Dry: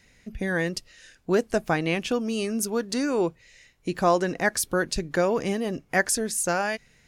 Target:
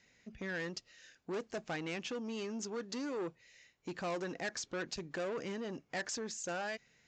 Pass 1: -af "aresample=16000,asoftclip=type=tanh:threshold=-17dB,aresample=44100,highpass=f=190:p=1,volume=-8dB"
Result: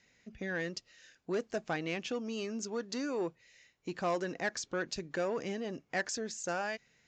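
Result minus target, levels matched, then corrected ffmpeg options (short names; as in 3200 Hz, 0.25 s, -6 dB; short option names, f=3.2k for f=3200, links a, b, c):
soft clip: distortion -8 dB
-af "aresample=16000,asoftclip=type=tanh:threshold=-25.5dB,aresample=44100,highpass=f=190:p=1,volume=-8dB"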